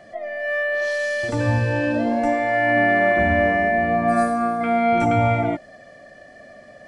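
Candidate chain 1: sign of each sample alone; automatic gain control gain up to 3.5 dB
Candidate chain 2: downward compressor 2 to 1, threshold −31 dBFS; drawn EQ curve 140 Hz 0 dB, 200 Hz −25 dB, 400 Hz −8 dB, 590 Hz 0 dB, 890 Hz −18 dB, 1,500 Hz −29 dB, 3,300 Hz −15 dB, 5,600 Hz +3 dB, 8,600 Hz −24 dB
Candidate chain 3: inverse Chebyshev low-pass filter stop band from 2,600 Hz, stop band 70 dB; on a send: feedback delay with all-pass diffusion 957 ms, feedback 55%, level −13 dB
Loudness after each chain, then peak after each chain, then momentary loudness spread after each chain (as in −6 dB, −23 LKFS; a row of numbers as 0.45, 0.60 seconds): −16.5, −33.0, −24.5 LKFS; −17.0, −20.0, −10.5 dBFS; 1, 18, 12 LU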